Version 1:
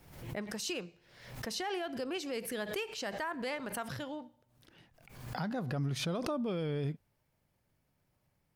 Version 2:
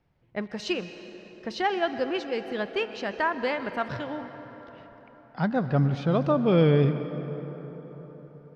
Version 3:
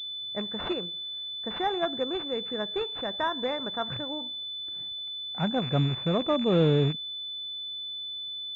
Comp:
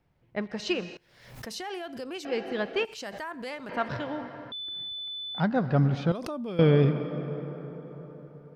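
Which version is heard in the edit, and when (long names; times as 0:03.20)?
2
0:00.97–0:02.25: punch in from 1
0:02.85–0:03.69: punch in from 1
0:04.52–0:05.40: punch in from 3
0:06.12–0:06.59: punch in from 1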